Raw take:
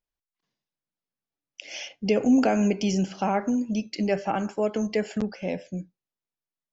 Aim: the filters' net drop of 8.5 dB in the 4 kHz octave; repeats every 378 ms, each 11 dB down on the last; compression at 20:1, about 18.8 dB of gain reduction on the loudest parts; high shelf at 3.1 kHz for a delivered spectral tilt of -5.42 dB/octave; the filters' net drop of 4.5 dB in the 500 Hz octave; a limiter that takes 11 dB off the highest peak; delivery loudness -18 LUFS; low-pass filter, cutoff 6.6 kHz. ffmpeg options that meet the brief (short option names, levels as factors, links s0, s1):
-af "lowpass=6600,equalizer=f=500:t=o:g=-5.5,highshelf=f=3100:g=-6.5,equalizer=f=4000:t=o:g=-6.5,acompressor=threshold=0.0178:ratio=20,alimiter=level_in=3.16:limit=0.0631:level=0:latency=1,volume=0.316,aecho=1:1:378|756|1134:0.282|0.0789|0.0221,volume=17.8"